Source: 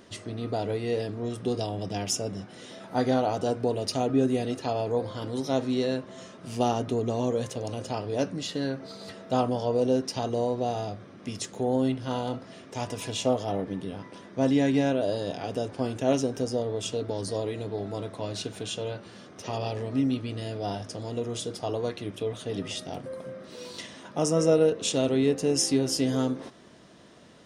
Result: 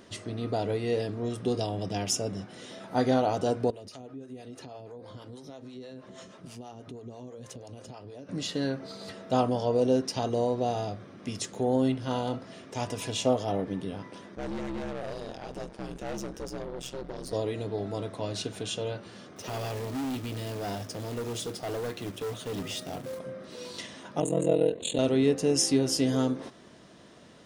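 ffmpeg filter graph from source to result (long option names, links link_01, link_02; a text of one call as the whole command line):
ffmpeg -i in.wav -filter_complex "[0:a]asettb=1/sr,asplit=3[link_01][link_02][link_03];[link_01]atrim=end=3.704[link_04];[link_02]atrim=start=3.7:end=8.29,asetpts=PTS-STARTPTS,afade=type=in:duration=0.004:curve=qsin,afade=type=out:start_time=4.586:duration=0.004:curve=qsin,acompressor=threshold=-37dB:ratio=8:attack=3.2:release=140:knee=1:detection=peak,acrossover=split=450[link_05][link_06];[link_05]aeval=exprs='val(0)*(1-0.7/2+0.7/2*cos(2*PI*6.2*n/s))':channel_layout=same[link_07];[link_06]aeval=exprs='val(0)*(1-0.7/2-0.7/2*cos(2*PI*6.2*n/s))':channel_layout=same[link_08];[link_07][link_08]amix=inputs=2:normalize=0[link_09];[link_03]atrim=start=8.286[link_10];[link_04][link_09]acrossfade=duration=0.004:curve1=hsin:curve2=qsin[link_11];[link_11][link_10]acrossfade=duration=0.004:curve1=qsin:curve2=hsin,asettb=1/sr,asplit=3[link_12][link_13][link_14];[link_12]atrim=end=14.354[link_15];[link_13]atrim=start=14.35:end=17.33,asetpts=PTS-STARTPTS,afade=type=in:duration=0.004:curve=qsin,afade=type=out:start_time=2.976:duration=0.004:curve=qsin,aeval=exprs='val(0)*sin(2*PI*65*n/s)':channel_layout=same,aeval=exprs='(tanh(39.8*val(0)+0.55)-tanh(0.55))/39.8':channel_layout=same[link_16];[link_14]atrim=start=17.326[link_17];[link_15][link_16]acrossfade=duration=0.004:curve1=hsin:curve2=qsin[link_18];[link_18][link_17]acrossfade=duration=0.004:curve1=qsin:curve2=hsin,asettb=1/sr,asplit=3[link_19][link_20][link_21];[link_19]atrim=end=19.364[link_22];[link_20]atrim=start=19.36:end=23.19,asetpts=PTS-STARTPTS,afade=type=in:duration=0.004:curve=qsin,afade=type=out:start_time=3.826:duration=0.004:curve=qsin,acrusher=bits=3:mode=log:mix=0:aa=0.000001,highpass=frequency=71:width=0.5412,highpass=frequency=71:width=1.3066,asoftclip=type=hard:threshold=-30dB[link_23];[link_21]atrim=start=23.186[link_24];[link_22][link_23]acrossfade=duration=0.004:curve1=hsin:curve2=qsin[link_25];[link_25][link_24]acrossfade=duration=0.004:curve1=qsin:curve2=hsin,asettb=1/sr,asplit=3[link_26][link_27][link_28];[link_26]atrim=end=24.204[link_29];[link_27]atrim=start=24.2:end=24.99,asetpts=PTS-STARTPTS,afade=type=in:duration=0.004:curve=qsin,afade=type=out:start_time=0.786:duration=0.004:curve=qsin,equalizer=frequency=1300:width_type=o:width=0.44:gain=-14,aeval=exprs='val(0)*sin(2*PI*21*n/s)':channel_layout=same,asuperstop=centerf=5400:order=12:qfactor=2.4[link_30];[link_28]atrim=start=24.986[link_31];[link_29][link_30]acrossfade=duration=0.004:curve1=hsin:curve2=qsin[link_32];[link_32][link_31]acrossfade=duration=0.004:curve1=qsin:curve2=hsin" out.wav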